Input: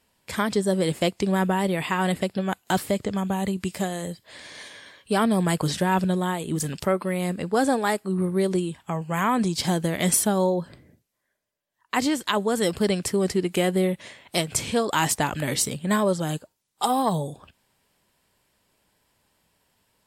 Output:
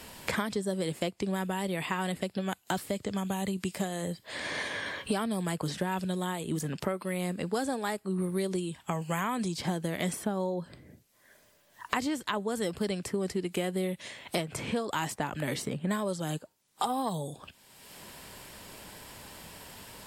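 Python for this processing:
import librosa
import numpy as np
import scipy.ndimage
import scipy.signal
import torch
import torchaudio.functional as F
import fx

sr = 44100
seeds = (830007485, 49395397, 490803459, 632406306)

y = fx.band_squash(x, sr, depth_pct=100)
y = y * librosa.db_to_amplitude(-9.0)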